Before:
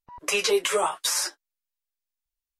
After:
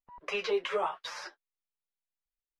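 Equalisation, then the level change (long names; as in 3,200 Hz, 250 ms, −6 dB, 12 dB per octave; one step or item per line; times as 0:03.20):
high-frequency loss of the air 270 metres
parametric band 91 Hz −14.5 dB 0.68 octaves
parametric band 300 Hz −9 dB 0.28 octaves
−5.0 dB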